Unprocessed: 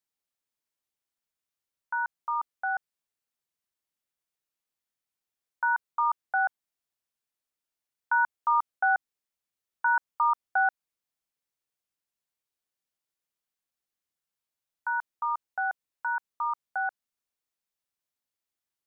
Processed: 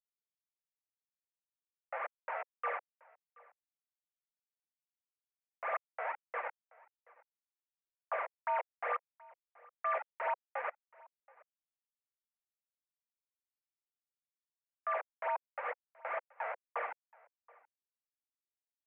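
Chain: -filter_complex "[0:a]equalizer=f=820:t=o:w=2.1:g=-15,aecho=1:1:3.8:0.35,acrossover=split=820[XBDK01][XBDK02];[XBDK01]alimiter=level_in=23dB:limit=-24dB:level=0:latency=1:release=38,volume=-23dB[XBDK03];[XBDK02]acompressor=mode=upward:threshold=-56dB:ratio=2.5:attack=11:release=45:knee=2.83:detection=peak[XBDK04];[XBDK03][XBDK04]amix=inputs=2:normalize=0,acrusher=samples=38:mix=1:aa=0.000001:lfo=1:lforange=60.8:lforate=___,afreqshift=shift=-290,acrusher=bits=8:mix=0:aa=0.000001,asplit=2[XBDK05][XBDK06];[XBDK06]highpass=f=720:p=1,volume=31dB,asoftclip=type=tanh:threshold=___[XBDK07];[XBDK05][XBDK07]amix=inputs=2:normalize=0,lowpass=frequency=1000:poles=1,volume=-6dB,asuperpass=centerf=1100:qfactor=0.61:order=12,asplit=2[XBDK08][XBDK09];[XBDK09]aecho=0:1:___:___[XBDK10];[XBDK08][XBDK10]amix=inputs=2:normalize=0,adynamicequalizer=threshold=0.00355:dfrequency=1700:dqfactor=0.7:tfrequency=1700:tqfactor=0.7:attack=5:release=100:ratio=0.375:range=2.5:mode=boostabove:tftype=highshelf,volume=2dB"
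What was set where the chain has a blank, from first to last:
2.2, -24.5dB, 727, 0.0631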